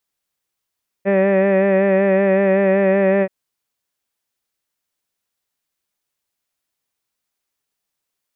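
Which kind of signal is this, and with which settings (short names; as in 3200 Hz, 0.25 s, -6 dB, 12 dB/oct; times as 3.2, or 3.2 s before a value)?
formant-synthesis vowel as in head, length 2.23 s, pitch 194 Hz, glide 0 st, vibrato depth 0.4 st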